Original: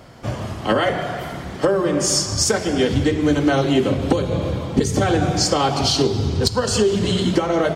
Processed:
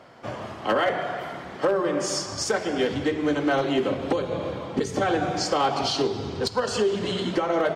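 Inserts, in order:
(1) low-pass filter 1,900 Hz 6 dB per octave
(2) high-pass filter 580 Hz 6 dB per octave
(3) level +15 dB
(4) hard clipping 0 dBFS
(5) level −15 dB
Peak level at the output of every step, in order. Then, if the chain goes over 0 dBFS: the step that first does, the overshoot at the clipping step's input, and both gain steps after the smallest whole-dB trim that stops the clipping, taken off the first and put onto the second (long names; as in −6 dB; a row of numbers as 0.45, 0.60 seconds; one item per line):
−6.0, −8.0, +7.0, 0.0, −15.0 dBFS
step 3, 7.0 dB
step 3 +8 dB, step 5 −8 dB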